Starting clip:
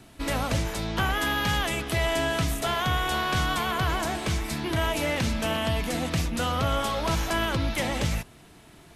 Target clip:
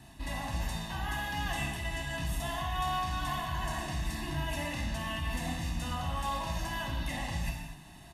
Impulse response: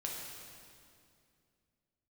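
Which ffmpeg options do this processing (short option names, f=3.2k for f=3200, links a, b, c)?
-filter_complex "[0:a]aecho=1:1:1.1:0.79,areverse,acompressor=threshold=-29dB:ratio=12,areverse,atempo=1.1[a];[1:a]atrim=start_sample=2205,afade=t=out:st=0.33:d=0.01,atrim=end_sample=14994,asetrate=48510,aresample=44100[b];[a][b]afir=irnorm=-1:irlink=0,volume=-1.5dB"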